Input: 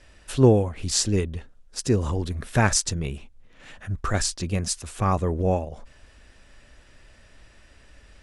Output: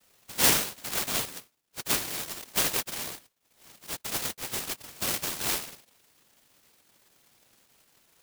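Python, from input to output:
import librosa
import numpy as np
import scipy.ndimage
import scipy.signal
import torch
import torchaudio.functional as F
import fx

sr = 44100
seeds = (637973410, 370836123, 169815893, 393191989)

y = fx.sample_hold(x, sr, seeds[0], rate_hz=1900.0, jitter_pct=0)
y = fx.noise_vocoder(y, sr, seeds[1], bands=1)
y = fx.noise_mod_delay(y, sr, seeds[2], noise_hz=2700.0, depth_ms=0.24)
y = y * 10.0 ** (-6.0 / 20.0)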